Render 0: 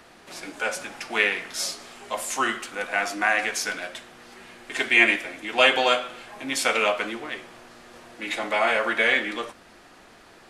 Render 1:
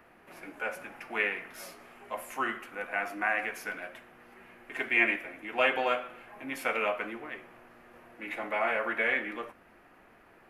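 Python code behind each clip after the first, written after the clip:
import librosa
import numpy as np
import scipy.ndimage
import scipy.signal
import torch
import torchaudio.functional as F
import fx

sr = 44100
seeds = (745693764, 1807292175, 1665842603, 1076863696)

y = fx.band_shelf(x, sr, hz=5500.0, db=-15.0, octaves=1.7)
y = F.gain(torch.from_numpy(y), -7.0).numpy()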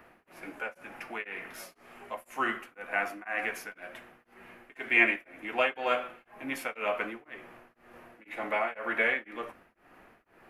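y = x * np.abs(np.cos(np.pi * 2.0 * np.arange(len(x)) / sr))
y = F.gain(torch.from_numpy(y), 2.5).numpy()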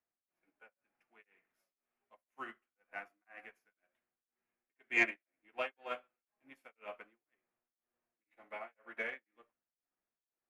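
y = 10.0 ** (-10.5 / 20.0) * np.tanh(x / 10.0 ** (-10.5 / 20.0))
y = fx.upward_expand(y, sr, threshold_db=-44.0, expansion=2.5)
y = F.gain(torch.from_numpy(y), -4.5).numpy()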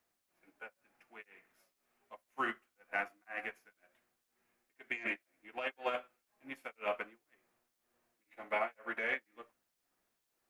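y = fx.over_compress(x, sr, threshold_db=-43.0, ratio=-1.0)
y = F.gain(torch.from_numpy(y), 7.0).numpy()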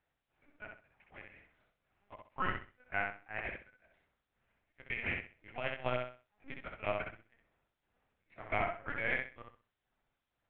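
y = fx.lpc_vocoder(x, sr, seeds[0], excitation='pitch_kept', order=10)
y = fx.echo_feedback(y, sr, ms=64, feedback_pct=26, wet_db=-4.0)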